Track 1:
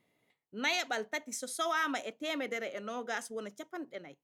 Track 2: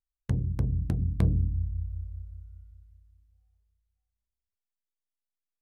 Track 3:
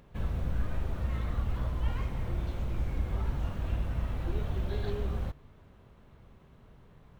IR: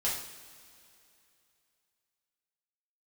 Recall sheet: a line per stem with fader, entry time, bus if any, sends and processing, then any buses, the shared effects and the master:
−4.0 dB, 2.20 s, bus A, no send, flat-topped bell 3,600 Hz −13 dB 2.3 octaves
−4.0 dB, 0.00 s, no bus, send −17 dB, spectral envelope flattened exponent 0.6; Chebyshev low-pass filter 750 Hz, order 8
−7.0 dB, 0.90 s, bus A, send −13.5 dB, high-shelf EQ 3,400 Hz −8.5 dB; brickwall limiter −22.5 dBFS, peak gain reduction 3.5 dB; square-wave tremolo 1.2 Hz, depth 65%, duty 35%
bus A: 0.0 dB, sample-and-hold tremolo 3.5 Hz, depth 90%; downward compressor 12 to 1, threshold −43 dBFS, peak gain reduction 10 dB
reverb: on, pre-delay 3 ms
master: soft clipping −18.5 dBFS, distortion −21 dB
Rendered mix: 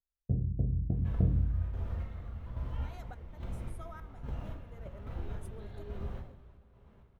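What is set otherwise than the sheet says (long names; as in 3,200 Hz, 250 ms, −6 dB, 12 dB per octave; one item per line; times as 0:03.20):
stem 2: missing spectral envelope flattened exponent 0.6
stem 3 −7.0 dB → +1.0 dB
master: missing soft clipping −18.5 dBFS, distortion −21 dB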